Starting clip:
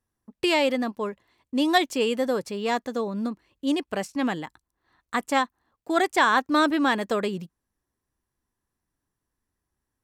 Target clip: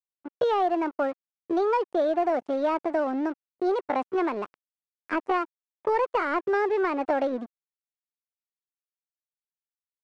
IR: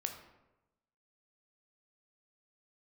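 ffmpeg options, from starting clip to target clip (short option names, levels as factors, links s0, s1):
-filter_complex "[0:a]tiltshelf=f=1200:g=9.5,acrossover=split=88|620|2200[s0][s1][s2][s3];[s0]acompressor=threshold=0.00126:ratio=4[s4];[s1]acompressor=threshold=0.0398:ratio=4[s5];[s2]acompressor=threshold=0.0251:ratio=4[s6];[s3]acompressor=threshold=0.00282:ratio=4[s7];[s4][s5][s6][s7]amix=inputs=4:normalize=0,aresample=16000,aeval=exprs='sgn(val(0))*max(abs(val(0))-0.00631,0)':c=same,aresample=44100,asetrate=58866,aresample=44100,atempo=0.749154,asplit=2[s8][s9];[s9]highpass=f=720:p=1,volume=3.55,asoftclip=type=tanh:threshold=0.224[s10];[s8][s10]amix=inputs=2:normalize=0,lowpass=f=1300:p=1,volume=0.501,volume=1.19"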